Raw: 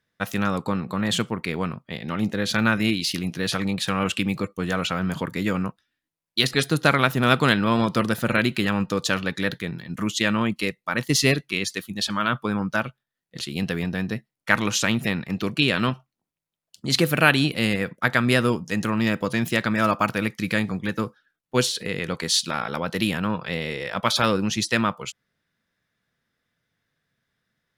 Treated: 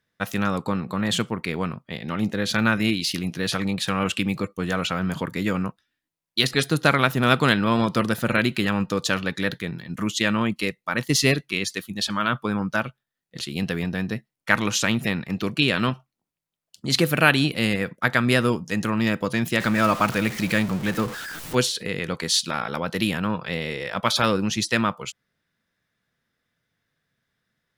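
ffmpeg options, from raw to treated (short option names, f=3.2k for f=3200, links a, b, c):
-filter_complex "[0:a]asettb=1/sr,asplit=3[a][b][c];[a]atrim=end=19.604[d];[b]atrim=start=19.6:end=21.55,asetpts=PTS-STARTPTS,afade=t=in:d=0.004:c=qsin,afade=t=out:st=1.946:d=0.004:c=qsin,aeval=exprs='val(0)+0.5*0.0376*sgn(val(0))':c=same[e];[c]atrim=start=21.546[f];[d][e]acrossfade=d=0.004:c1=hsin:c2=qsin[g];[g][f]acrossfade=d=0.004:c1=qsin:c2=hsin"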